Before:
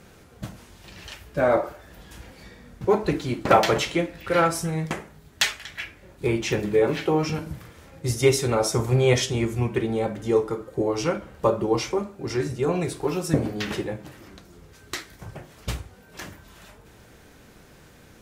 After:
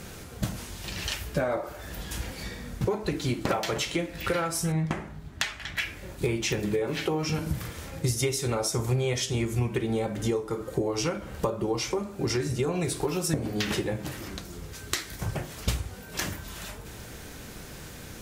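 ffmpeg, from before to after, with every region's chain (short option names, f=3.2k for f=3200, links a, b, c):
-filter_complex "[0:a]asettb=1/sr,asplit=3[a][b][c];[a]atrim=end=4.724[d];[b]atrim=start=4.72:end=5.77,asetpts=PTS-STARTPTS,afade=t=in:d=0.004:c=qsin,afade=t=out:st=1.046:d=0.004:c=qsin,lowpass=f=1.4k:p=1,equalizer=f=470:w=4:g=-8[e];[c]atrim=start=5.766[f];[d][e]acrossfade=d=0.004:c1=hsin:c2=qsin[g];[g][f]acrossfade=d=0.004:c1=qsin:c2=hsin,highshelf=f=3.1k:g=7.5,acompressor=threshold=-31dB:ratio=10,lowshelf=f=170:g=4.5,volume=5.5dB"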